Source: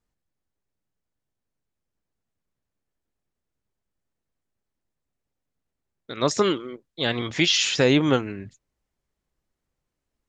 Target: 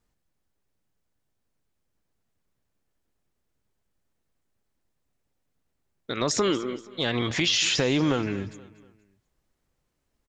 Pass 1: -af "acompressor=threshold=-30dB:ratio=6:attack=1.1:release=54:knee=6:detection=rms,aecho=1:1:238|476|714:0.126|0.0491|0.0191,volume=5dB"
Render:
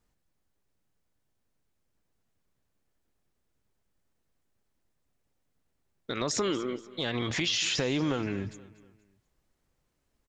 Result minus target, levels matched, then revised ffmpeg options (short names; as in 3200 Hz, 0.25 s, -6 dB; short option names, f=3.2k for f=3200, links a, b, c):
compressor: peak gain reduction +5.5 dB
-af "acompressor=threshold=-23.5dB:ratio=6:attack=1.1:release=54:knee=6:detection=rms,aecho=1:1:238|476|714:0.126|0.0491|0.0191,volume=5dB"